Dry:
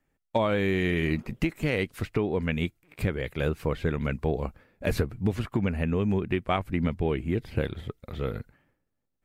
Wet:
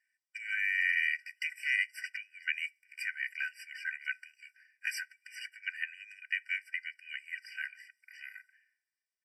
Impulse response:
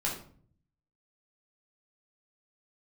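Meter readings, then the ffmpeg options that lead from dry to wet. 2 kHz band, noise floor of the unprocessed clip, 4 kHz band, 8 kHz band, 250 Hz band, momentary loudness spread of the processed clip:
+3.5 dB, -79 dBFS, -3.5 dB, -0.5 dB, under -40 dB, 18 LU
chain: -filter_complex "[0:a]lowpass=8.9k,equalizer=f=2.7k:t=o:w=0.2:g=-9.5,aecho=1:1:2.1:0.94,asplit=2[a][b];[1:a]atrim=start_sample=2205,asetrate=66150,aresample=44100[c];[b][c]afir=irnorm=-1:irlink=0,volume=-22dB[d];[a][d]amix=inputs=2:normalize=0,afftfilt=real='re*eq(mod(floor(b*sr/1024/1500),2),1)':imag='im*eq(mod(floor(b*sr/1024/1500),2),1)':win_size=1024:overlap=0.75,volume=1.5dB"

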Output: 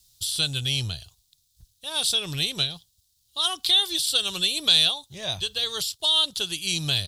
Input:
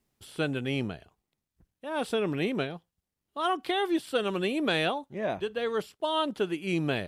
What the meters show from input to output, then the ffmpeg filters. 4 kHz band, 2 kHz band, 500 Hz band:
+16.5 dB, +0.5 dB, -9.5 dB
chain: -filter_complex "[0:a]firequalizer=gain_entry='entry(110,0);entry(220,-23);entry(860,-15);entry(2100,-13);entry(3700,13);entry(11000,10)':delay=0.05:min_phase=1,asplit=2[a][b];[b]acompressor=threshold=-36dB:ratio=6,volume=1dB[c];[a][c]amix=inputs=2:normalize=0,volume=5.5dB"

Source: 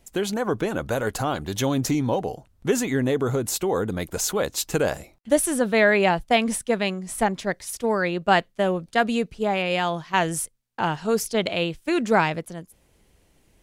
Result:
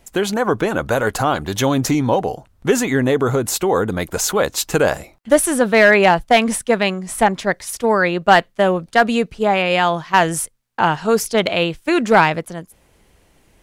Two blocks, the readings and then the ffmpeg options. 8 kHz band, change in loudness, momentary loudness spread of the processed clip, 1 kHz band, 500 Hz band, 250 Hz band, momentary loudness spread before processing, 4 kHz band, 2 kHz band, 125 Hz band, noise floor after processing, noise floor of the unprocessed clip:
+5.5 dB, +7.0 dB, 7 LU, +8.0 dB, +6.5 dB, +5.5 dB, 7 LU, +6.0 dB, +8.0 dB, +5.0 dB, -56 dBFS, -62 dBFS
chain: -af "volume=11.5dB,asoftclip=hard,volume=-11.5dB,equalizer=f=1.2k:w=0.62:g=4.5,volume=5dB"

